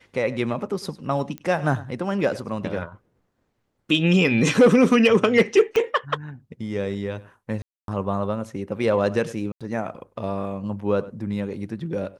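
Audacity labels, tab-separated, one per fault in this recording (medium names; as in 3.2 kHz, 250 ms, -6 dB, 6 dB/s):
1.380000	1.380000	pop -20 dBFS
5.760000	5.760000	pop -11 dBFS
7.620000	7.880000	dropout 262 ms
9.520000	9.610000	dropout 86 ms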